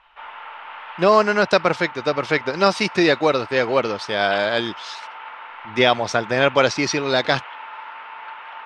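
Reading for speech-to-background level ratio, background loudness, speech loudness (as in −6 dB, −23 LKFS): 16.5 dB, −36.0 LKFS, −19.5 LKFS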